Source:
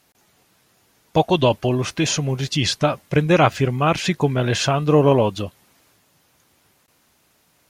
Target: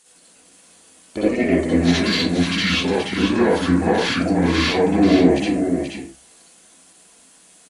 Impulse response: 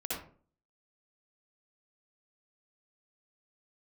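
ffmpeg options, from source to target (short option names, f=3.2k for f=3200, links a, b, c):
-filter_complex "[0:a]aemphasis=mode=production:type=50fm,bandreject=f=50:t=h:w=6,bandreject=f=100:t=h:w=6,bandreject=f=150:t=h:w=6,bandreject=f=200:t=h:w=6,aeval=exprs='(tanh(2.51*val(0)+0.35)-tanh(0.35))/2.51':c=same,lowshelf=f=230:t=q:w=1.5:g=-9,alimiter=limit=-13dB:level=0:latency=1:release=106,asetrate=29433,aresample=44100,atempo=1.49831,acrossover=split=7200[a][b];[b]acompressor=threshold=-42dB:ratio=4:attack=1:release=60[c];[a][c]amix=inputs=2:normalize=0,aecho=1:1:479:0.473[d];[1:a]atrim=start_sample=2205,afade=t=out:st=0.26:d=0.01,atrim=end_sample=11907[e];[d][e]afir=irnorm=-1:irlink=0,volume=2dB"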